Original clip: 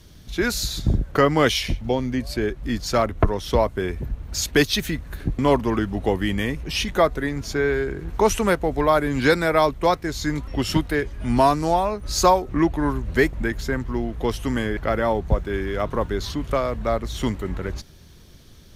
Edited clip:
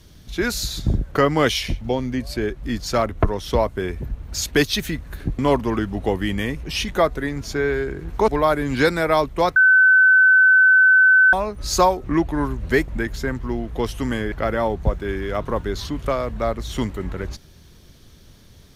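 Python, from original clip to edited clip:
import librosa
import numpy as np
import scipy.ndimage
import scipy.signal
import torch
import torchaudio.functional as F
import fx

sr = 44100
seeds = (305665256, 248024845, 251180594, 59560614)

y = fx.edit(x, sr, fx.cut(start_s=8.28, length_s=0.45),
    fx.bleep(start_s=10.01, length_s=1.77, hz=1520.0, db=-9.5), tone=tone)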